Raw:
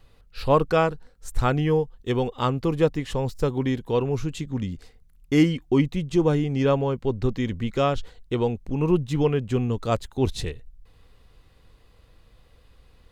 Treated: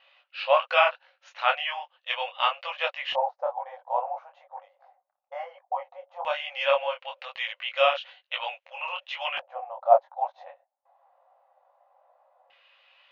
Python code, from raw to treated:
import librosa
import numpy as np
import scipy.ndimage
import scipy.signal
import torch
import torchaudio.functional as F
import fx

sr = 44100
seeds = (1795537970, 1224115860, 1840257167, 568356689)

y = fx.brickwall_bandpass(x, sr, low_hz=520.0, high_hz=6900.0)
y = fx.filter_lfo_lowpass(y, sr, shape='square', hz=0.16, low_hz=780.0, high_hz=2800.0, q=3.9)
y = fx.detune_double(y, sr, cents=37)
y = y * 10.0 ** (4.0 / 20.0)